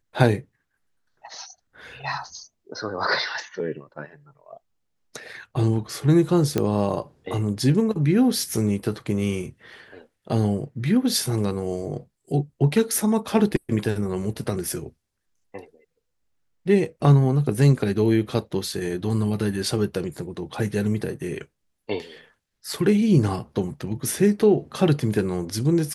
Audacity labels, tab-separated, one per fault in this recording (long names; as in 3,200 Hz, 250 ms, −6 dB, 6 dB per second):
6.580000	6.580000	click −9 dBFS